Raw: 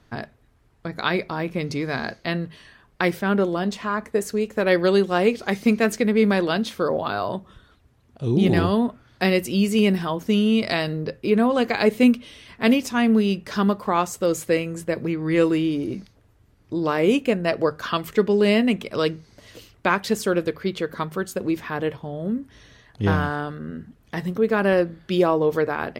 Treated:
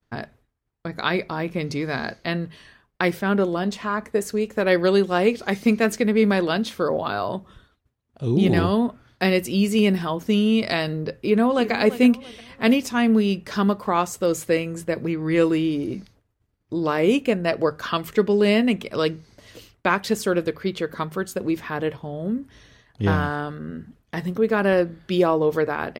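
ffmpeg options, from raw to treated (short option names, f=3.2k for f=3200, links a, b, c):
-filter_complex "[0:a]asplit=2[a][b];[b]afade=t=in:st=11.12:d=0.01,afade=t=out:st=11.72:d=0.01,aecho=0:1:340|680|1020:0.211349|0.0739721|0.0258902[c];[a][c]amix=inputs=2:normalize=0,agate=range=-33dB:threshold=-47dB:ratio=3:detection=peak"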